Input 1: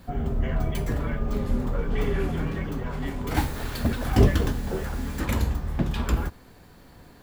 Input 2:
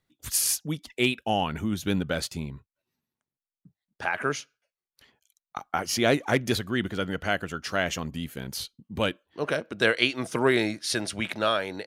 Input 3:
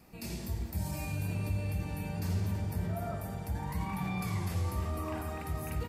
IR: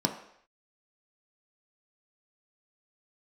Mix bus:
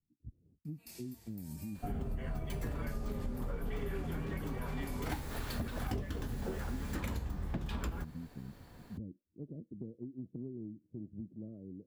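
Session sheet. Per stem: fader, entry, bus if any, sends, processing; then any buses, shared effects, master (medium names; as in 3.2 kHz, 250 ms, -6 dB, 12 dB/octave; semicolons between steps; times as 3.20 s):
-6.5 dB, 1.75 s, no bus, no send, none
-4.0 dB, 0.00 s, bus A, no send, inverse Chebyshev low-pass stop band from 1.7 kHz, stop band 80 dB; rotary cabinet horn 5.5 Hz
-14.5 dB, 0.65 s, bus A, no send, tilt EQ +3 dB/octave
bus A: 0.0 dB, compression 6:1, threshold -40 dBFS, peak gain reduction 12 dB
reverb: none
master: compression 12:1, threshold -33 dBFS, peak gain reduction 16 dB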